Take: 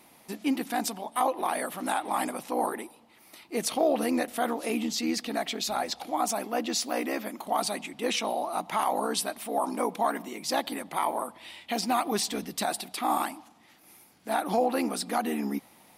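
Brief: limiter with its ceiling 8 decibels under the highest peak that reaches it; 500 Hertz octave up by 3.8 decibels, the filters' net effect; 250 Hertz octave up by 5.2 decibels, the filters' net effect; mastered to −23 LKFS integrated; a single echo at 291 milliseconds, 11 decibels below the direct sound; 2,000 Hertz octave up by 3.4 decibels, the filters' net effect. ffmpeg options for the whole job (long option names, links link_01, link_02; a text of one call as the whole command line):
ffmpeg -i in.wav -af "equalizer=frequency=250:width_type=o:gain=5,equalizer=frequency=500:width_type=o:gain=3.5,equalizer=frequency=2000:width_type=o:gain=4,alimiter=limit=-18.5dB:level=0:latency=1,aecho=1:1:291:0.282,volume=6.5dB" out.wav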